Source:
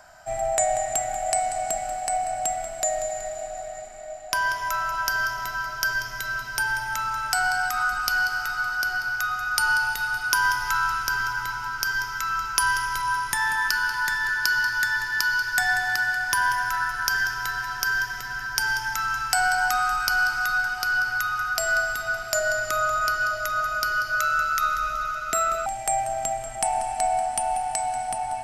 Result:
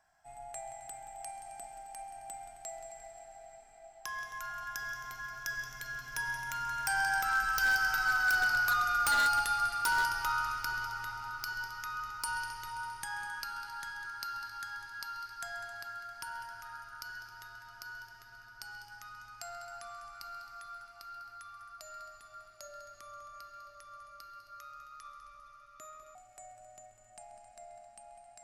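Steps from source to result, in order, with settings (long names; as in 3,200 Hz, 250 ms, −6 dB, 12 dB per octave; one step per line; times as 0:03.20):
source passing by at 0:08.48, 22 m/s, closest 19 metres
echo machine with several playback heads 133 ms, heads first and second, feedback 53%, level −18.5 dB
wave folding −21 dBFS
level −1.5 dB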